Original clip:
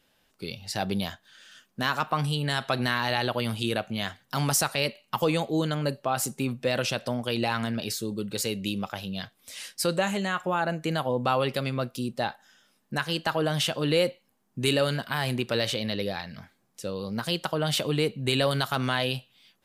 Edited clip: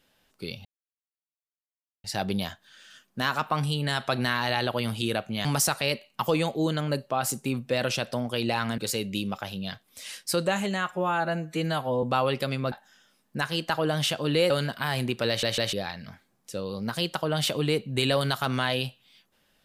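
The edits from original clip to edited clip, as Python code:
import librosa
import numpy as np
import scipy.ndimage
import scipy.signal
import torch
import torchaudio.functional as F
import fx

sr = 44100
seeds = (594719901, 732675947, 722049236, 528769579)

y = fx.edit(x, sr, fx.insert_silence(at_s=0.65, length_s=1.39),
    fx.cut(start_s=4.06, length_s=0.33),
    fx.cut(start_s=7.72, length_s=0.57),
    fx.stretch_span(start_s=10.43, length_s=0.74, factor=1.5),
    fx.cut(start_s=11.86, length_s=0.43),
    fx.cut(start_s=14.07, length_s=0.73),
    fx.stutter_over(start_s=15.58, slice_s=0.15, count=3), tone=tone)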